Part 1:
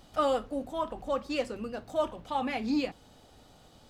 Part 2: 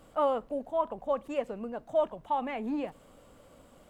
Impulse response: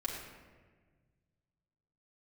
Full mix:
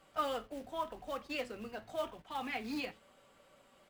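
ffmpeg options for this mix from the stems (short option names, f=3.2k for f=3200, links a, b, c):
-filter_complex "[0:a]acrusher=bits=5:mode=log:mix=0:aa=0.000001,volume=-5.5dB[a];[1:a]highpass=f=300:p=1,aecho=1:1:5.2:0.45,acompressor=threshold=-39dB:ratio=4,volume=-1,volume=-4.5dB,asplit=2[b][c];[c]apad=whole_len=171987[d];[a][d]sidechaingate=range=-10dB:threshold=-57dB:ratio=16:detection=peak[e];[e][b]amix=inputs=2:normalize=0,flanger=delay=6.1:depth=3.7:regen=79:speed=0.87:shape=triangular,equalizer=f=2.2k:t=o:w=1.9:g=7.5"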